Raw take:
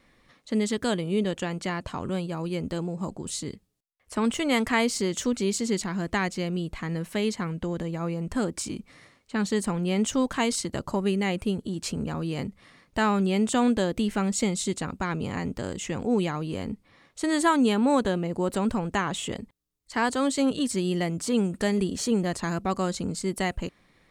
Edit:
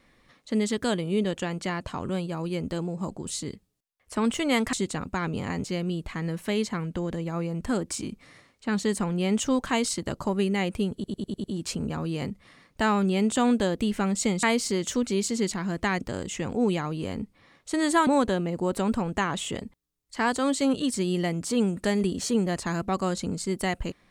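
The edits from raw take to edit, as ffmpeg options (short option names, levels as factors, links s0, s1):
-filter_complex "[0:a]asplit=11[s0][s1][s2][s3][s4][s5][s6][s7][s8][s9][s10];[s0]atrim=end=4.732[s11];[s1]atrim=start=14.598:end=15.512[s12];[s2]atrim=start=6.308:end=11.712[s13];[s3]atrim=start=11.608:end=11.712[s14];[s4]atrim=start=11.608:end=11.712[s15];[s5]atrim=start=11.608:end=11.712[s16];[s6]atrim=start=11.608:end=11.712[s17];[s7]atrim=start=11.608:end=14.602[s18];[s8]atrim=start=4.728:end=6.312[s19];[s9]atrim=start=15.508:end=17.572[s20];[s10]atrim=start=17.838[s21];[s11][s12]acrossfade=d=0.004:c1=hsin:c2=hsin[s22];[s22][s13]acrossfade=d=0.004:c1=hsin:c2=hsin[s23];[s23][s14]acrossfade=d=0.004:c1=hsin:c2=hsin[s24];[s24][s15]acrossfade=d=0.004:c1=hsin:c2=hsin[s25];[s25][s16]acrossfade=d=0.004:c1=hsin:c2=hsin[s26];[s26][s17]acrossfade=d=0.004:c1=hsin:c2=hsin[s27];[s27][s18]acrossfade=d=0.004:c1=hsin:c2=hsin[s28];[s28][s19]acrossfade=d=0.004:c1=hsin:c2=hsin[s29];[s29][s20]acrossfade=d=0.004:c1=hsin:c2=hsin[s30];[s30][s21]acrossfade=d=0.004:c1=hsin:c2=hsin"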